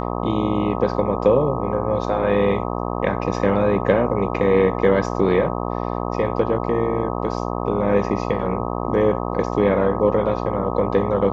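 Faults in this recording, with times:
buzz 60 Hz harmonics 21 -25 dBFS

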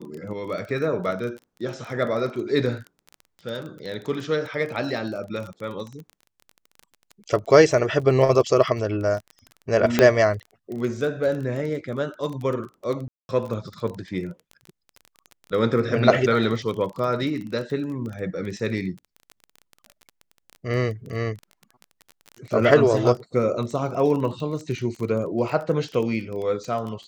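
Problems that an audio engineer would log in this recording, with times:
crackle 23/s -30 dBFS
9.99 pop -3 dBFS
13.08–13.29 gap 0.211 s

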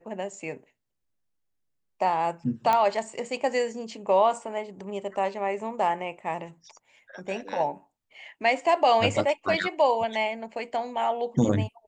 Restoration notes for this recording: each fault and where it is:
2.73 pop -11 dBFS

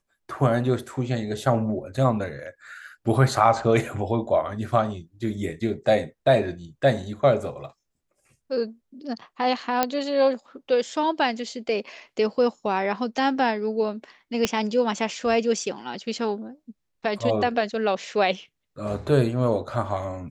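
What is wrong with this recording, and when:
9.83 pop -6 dBFS
14.45 pop -6 dBFS

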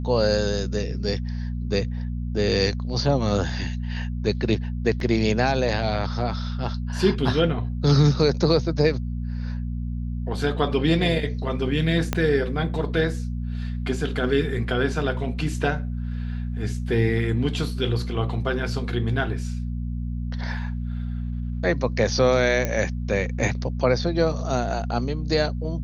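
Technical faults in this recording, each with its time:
hum 60 Hz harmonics 4 -28 dBFS
5 gap 2.6 ms
12.13 pop -8 dBFS
22.65 pop -11 dBFS

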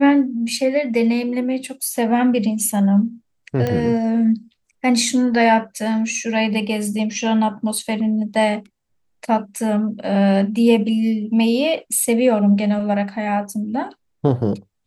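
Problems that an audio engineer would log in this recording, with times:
3.67 pop -10 dBFS

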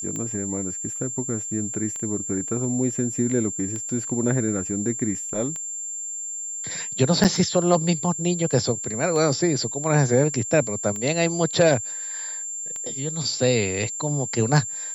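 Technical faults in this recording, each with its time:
tick 33 1/3 rpm -19 dBFS
tone 7300 Hz -29 dBFS
7.24–7.25 gap 7.1 ms
8.51 gap 2.2 ms

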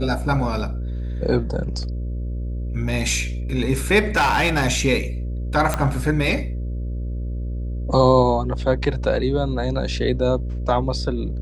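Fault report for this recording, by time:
buzz 60 Hz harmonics 10 -26 dBFS
4.16–4.65 clipped -14 dBFS
5.74 pop -7 dBFS

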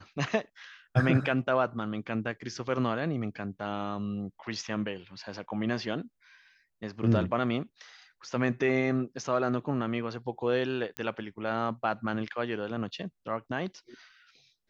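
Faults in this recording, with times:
10.97 pop -19 dBFS

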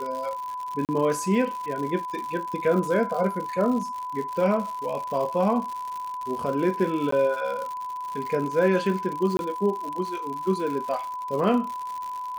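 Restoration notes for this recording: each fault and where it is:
crackle 140/s -31 dBFS
tone 1000 Hz -30 dBFS
0.85–0.89 gap 38 ms
7.11–7.12 gap 14 ms
9.37–9.39 gap 21 ms

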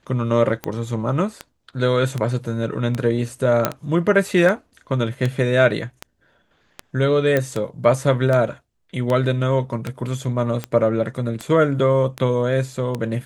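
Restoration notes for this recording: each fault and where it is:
tick 78 rpm -11 dBFS
3.65 pop -2 dBFS
7.37 pop -7 dBFS

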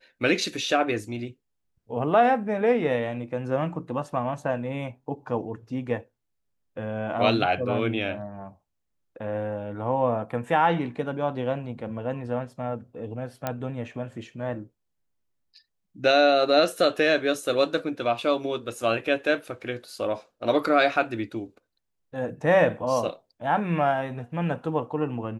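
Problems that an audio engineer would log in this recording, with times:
13.47 pop -13 dBFS

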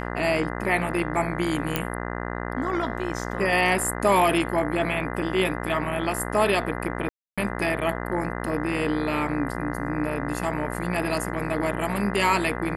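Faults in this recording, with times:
buzz 60 Hz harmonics 34 -31 dBFS
1.76 pop -7 dBFS
7.09–7.38 gap 0.286 s

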